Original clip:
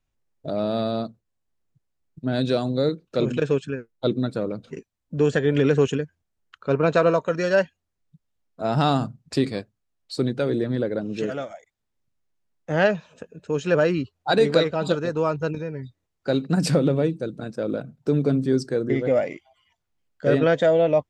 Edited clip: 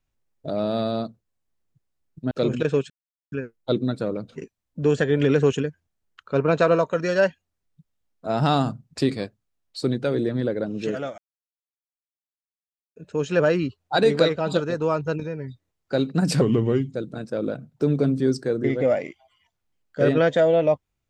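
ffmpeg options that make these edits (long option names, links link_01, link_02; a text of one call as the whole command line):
ffmpeg -i in.wav -filter_complex "[0:a]asplit=7[link_01][link_02][link_03][link_04][link_05][link_06][link_07];[link_01]atrim=end=2.312[link_08];[link_02]atrim=start=3.078:end=3.67,asetpts=PTS-STARTPTS,afade=type=out:start_time=0.588:duration=0.004:curve=hsin,apad=pad_dur=0.42[link_09];[link_03]atrim=start=3.67:end=11.53,asetpts=PTS-STARTPTS,afade=type=in:duration=0.004:curve=hsin,afade=type=out:start_time=7.856:duration=0.004:curve=hsin[link_10];[link_04]atrim=start=11.53:end=13.31,asetpts=PTS-STARTPTS,volume=0[link_11];[link_05]atrim=start=13.31:end=16.764,asetpts=PTS-STARTPTS,afade=type=in:duration=0.004:curve=hsin[link_12];[link_06]atrim=start=16.76:end=17.21,asetpts=PTS-STARTPTS,asetrate=36603,aresample=44100[link_13];[link_07]atrim=start=17.206[link_14];[link_09][link_10][link_11][link_12]concat=n=4:v=0:a=1[link_15];[link_08][link_15]acrossfade=duration=0.004:curve1=hsin:curve2=hsin[link_16];[link_16][link_13]acrossfade=duration=0.004:curve1=hsin:curve2=hsin[link_17];[link_17][link_14]acrossfade=duration=0.004:curve1=hsin:curve2=hsin" out.wav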